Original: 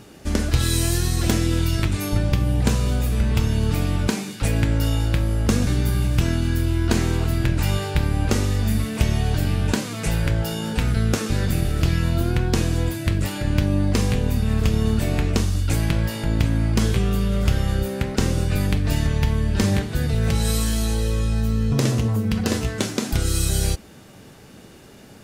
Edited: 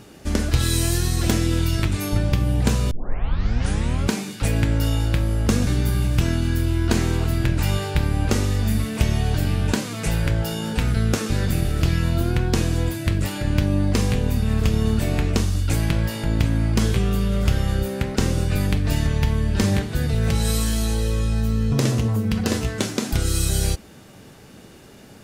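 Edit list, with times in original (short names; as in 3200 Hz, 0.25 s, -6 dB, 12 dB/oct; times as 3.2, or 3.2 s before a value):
2.91 tape start 1.20 s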